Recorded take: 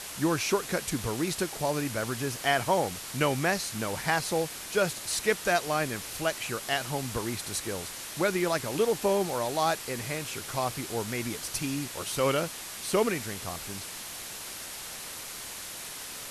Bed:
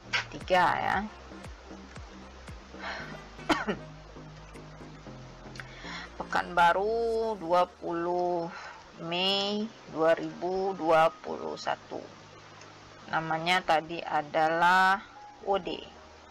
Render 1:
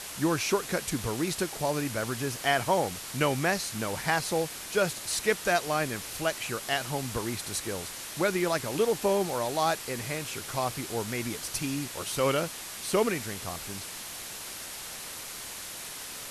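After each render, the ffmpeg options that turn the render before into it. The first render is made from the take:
ffmpeg -i in.wav -af anull out.wav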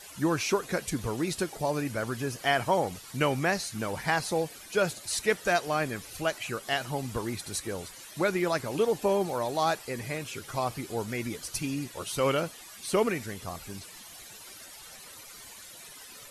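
ffmpeg -i in.wav -af "afftdn=noise_reduction=13:noise_floor=-41" out.wav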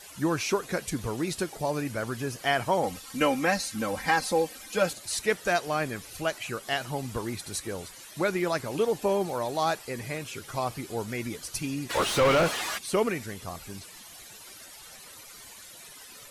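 ffmpeg -i in.wav -filter_complex "[0:a]asettb=1/sr,asplit=3[link_01][link_02][link_03];[link_01]atrim=end=2.834[link_04];[link_02]atrim=start=2.83:end=4.93,asetpts=PTS-STARTPTS,afade=type=in:duration=0.004:curve=qsin,afade=type=out:start_time=2.096:duration=0.004:curve=qsin,aecho=1:1:3.8:0.83,atrim=end_sample=92610[link_05];[link_03]atrim=start=4.926[link_06];[link_04][link_05]acrossfade=duration=0.004:curve1=hsin:curve2=qsin[link_07];[link_07][link_06]acrossfade=duration=0.004:curve1=qsin:curve2=hsin,asplit=3[link_08][link_09][link_10];[link_08]afade=type=out:start_time=11.89:duration=0.02[link_11];[link_09]asplit=2[link_12][link_13];[link_13]highpass=frequency=720:poles=1,volume=32dB,asoftclip=type=tanh:threshold=-14dB[link_14];[link_12][link_14]amix=inputs=2:normalize=0,lowpass=frequency=1900:poles=1,volume=-6dB,afade=type=in:start_time=11.89:duration=0.02,afade=type=out:start_time=12.77:duration=0.02[link_15];[link_10]afade=type=in:start_time=12.77:duration=0.02[link_16];[link_11][link_15][link_16]amix=inputs=3:normalize=0" out.wav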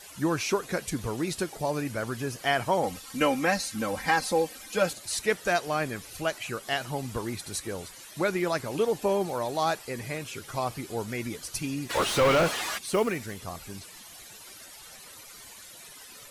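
ffmpeg -i in.wav -filter_complex "[0:a]asettb=1/sr,asplit=3[link_01][link_02][link_03];[link_01]atrim=end=11.844[link_04];[link_02]atrim=start=11.84:end=13.39,asetpts=PTS-STARTPTS,afade=type=in:duration=0.004:curve=qsin,afade=type=out:start_time=1.546:duration=0.004:curve=qsin,acrusher=bits=7:mode=log:mix=0:aa=0.000001[link_05];[link_03]atrim=start=13.386[link_06];[link_04][link_05]acrossfade=duration=0.004:curve1=hsin:curve2=qsin[link_07];[link_07][link_06]acrossfade=duration=0.004:curve1=qsin:curve2=hsin" out.wav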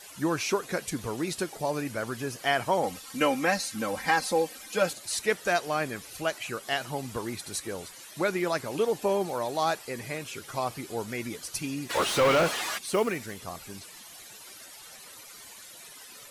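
ffmpeg -i in.wav -af "lowshelf=frequency=100:gain=-9.5" out.wav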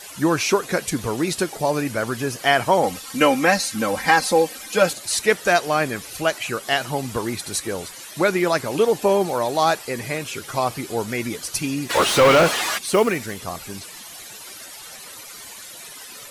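ffmpeg -i in.wav -af "volume=8.5dB" out.wav

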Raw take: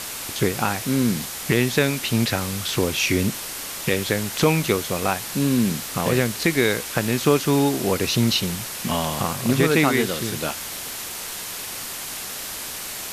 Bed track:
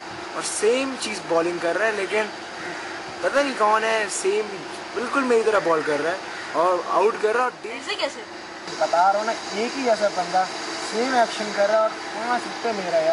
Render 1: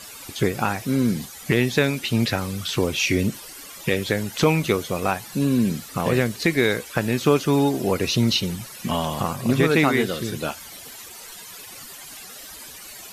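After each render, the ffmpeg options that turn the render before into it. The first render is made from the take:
ffmpeg -i in.wav -af "afftdn=noise_reduction=14:noise_floor=-33" out.wav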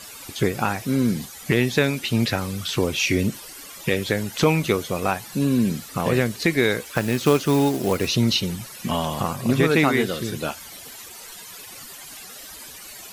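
ffmpeg -i in.wav -filter_complex "[0:a]asettb=1/sr,asplit=3[link_01][link_02][link_03];[link_01]atrim=end=6.814[link_04];[link_02]atrim=start=6.81:end=8.08,asetpts=PTS-STARTPTS,afade=type=in:duration=0.004:curve=qsin,afade=type=out:start_time=1.266:duration=0.004:curve=qsin,acrusher=bits=4:mode=log:mix=0:aa=0.000001[link_05];[link_03]atrim=start=8.076[link_06];[link_04][link_05]acrossfade=duration=0.004:curve1=hsin:curve2=qsin[link_07];[link_07][link_06]acrossfade=duration=0.004:curve1=qsin:curve2=hsin" out.wav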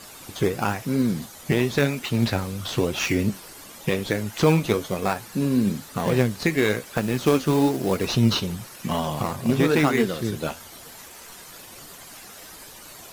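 ffmpeg -i in.wav -filter_complex "[0:a]flanger=delay=4:depth=9.2:regen=63:speed=1:shape=triangular,asplit=2[link_01][link_02];[link_02]acrusher=samples=13:mix=1:aa=0.000001:lfo=1:lforange=7.8:lforate=0.87,volume=-6.5dB[link_03];[link_01][link_03]amix=inputs=2:normalize=0" out.wav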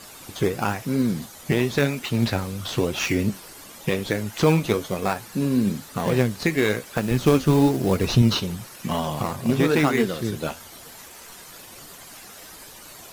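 ffmpeg -i in.wav -filter_complex "[0:a]asettb=1/sr,asplit=3[link_01][link_02][link_03];[link_01]atrim=end=7.114[link_04];[link_02]atrim=start=7.11:end=8.22,asetpts=PTS-STARTPTS,afade=type=in:duration=0.004:curve=qsin,afade=type=out:start_time=1.106:duration=0.004:curve=qsin,lowshelf=frequency=130:gain=11.5[link_05];[link_03]atrim=start=8.216[link_06];[link_04][link_05]acrossfade=duration=0.004:curve1=hsin:curve2=qsin[link_07];[link_07][link_06]acrossfade=duration=0.004:curve1=qsin:curve2=hsin" out.wav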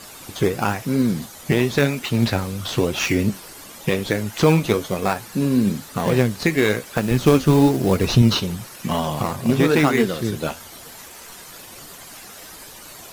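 ffmpeg -i in.wav -af "volume=3dB,alimiter=limit=-3dB:level=0:latency=1" out.wav

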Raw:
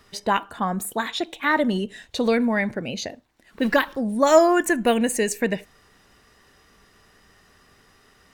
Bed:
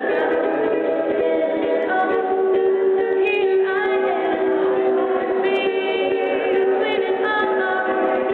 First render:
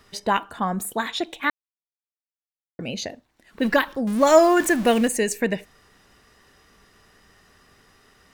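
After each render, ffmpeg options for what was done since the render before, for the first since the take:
ffmpeg -i in.wav -filter_complex "[0:a]asettb=1/sr,asplit=3[link_01][link_02][link_03];[link_01]atrim=end=4.074[link_04];[link_02]atrim=start=4.07:end=5.08,asetpts=PTS-STARTPTS,afade=type=in:duration=0.004:curve=qsin,afade=type=out:start_time=1.006:duration=0.004:curve=qsin,aeval=exprs='val(0)+0.5*0.0398*sgn(val(0))':channel_layout=same[link_05];[link_03]atrim=start=5.076[link_06];[link_04][link_05]acrossfade=duration=0.004:curve1=hsin:curve2=qsin[link_07];[link_07][link_06]acrossfade=duration=0.004:curve1=qsin:curve2=hsin,asplit=3[link_08][link_09][link_10];[link_08]atrim=end=1.5,asetpts=PTS-STARTPTS,afade=type=out:start_time=1.496:duration=0.004:curve=hsin[link_11];[link_09]atrim=start=1.5:end=2.79,asetpts=PTS-STARTPTS,volume=0[link_12];[link_10]atrim=start=2.79,asetpts=PTS-STARTPTS,afade=type=in:duration=0.004:curve=hsin[link_13];[link_11][link_12][link_13]concat=n=3:v=0:a=1" out.wav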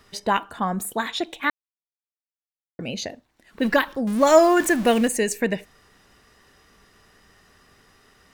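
ffmpeg -i in.wav -af anull out.wav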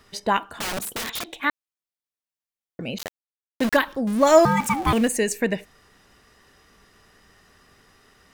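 ffmpeg -i in.wav -filter_complex "[0:a]asettb=1/sr,asplit=3[link_01][link_02][link_03];[link_01]atrim=end=0.564[link_04];[link_02]atrim=start=0.56:end=1.29,asetpts=PTS-STARTPTS,afade=type=in:duration=0.004:curve=qsin,afade=type=out:start_time=0.726:duration=0.004:curve=qsin,aeval=exprs='(mod(15*val(0)+1,2)-1)/15':channel_layout=same[link_05];[link_03]atrim=start=1.286[link_06];[link_04][link_05]acrossfade=duration=0.004:curve1=hsin:curve2=qsin[link_07];[link_07][link_06]acrossfade=duration=0.004:curve1=qsin:curve2=hsin,asettb=1/sr,asplit=3[link_08][link_09][link_10];[link_08]atrim=end=2.984[link_11];[link_09]atrim=start=2.98:end=3.77,asetpts=PTS-STARTPTS,afade=type=in:duration=0.004:curve=qsin,afade=type=out:start_time=0.786:duration=0.004:curve=qsin,aeval=exprs='val(0)*gte(abs(val(0)),0.0596)':channel_layout=same[link_12];[link_10]atrim=start=3.766[link_13];[link_11][link_12]acrossfade=duration=0.004:curve1=hsin:curve2=qsin[link_14];[link_14][link_13]acrossfade=duration=0.004:curve1=qsin:curve2=hsin,asettb=1/sr,asplit=3[link_15][link_16][link_17];[link_15]atrim=end=4.454[link_18];[link_16]atrim=start=4.45:end=4.93,asetpts=PTS-STARTPTS,afade=type=in:duration=0.004:curve=qsin,afade=type=out:start_time=0.476:duration=0.004:curve=qsin,aeval=exprs='val(0)*sin(2*PI*550*n/s)':channel_layout=same[link_19];[link_17]atrim=start=4.926[link_20];[link_18][link_19]acrossfade=duration=0.004:curve1=hsin:curve2=qsin[link_21];[link_21][link_20]acrossfade=duration=0.004:curve1=qsin:curve2=hsin" out.wav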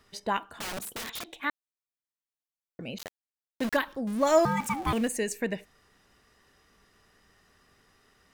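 ffmpeg -i in.wav -af "volume=-7.5dB" out.wav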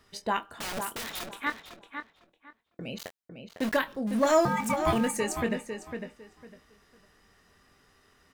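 ffmpeg -i in.wav -filter_complex "[0:a]asplit=2[link_01][link_02];[link_02]adelay=23,volume=-10dB[link_03];[link_01][link_03]amix=inputs=2:normalize=0,asplit=2[link_04][link_05];[link_05]adelay=503,lowpass=frequency=3000:poles=1,volume=-7dB,asplit=2[link_06][link_07];[link_07]adelay=503,lowpass=frequency=3000:poles=1,volume=0.23,asplit=2[link_08][link_09];[link_09]adelay=503,lowpass=frequency=3000:poles=1,volume=0.23[link_10];[link_04][link_06][link_08][link_10]amix=inputs=4:normalize=0" out.wav

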